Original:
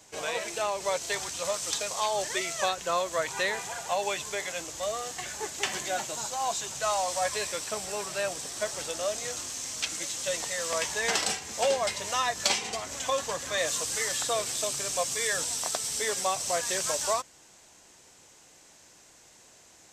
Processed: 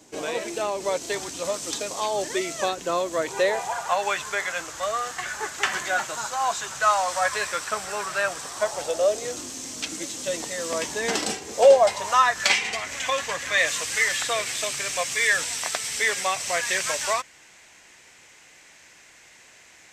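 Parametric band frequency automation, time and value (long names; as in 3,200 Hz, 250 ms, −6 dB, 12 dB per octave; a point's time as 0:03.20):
parametric band +13.5 dB 1.2 octaves
0:03.17 290 Hz
0:03.95 1,400 Hz
0:08.36 1,400 Hz
0:09.42 280 Hz
0:11.27 280 Hz
0:12.54 2,100 Hz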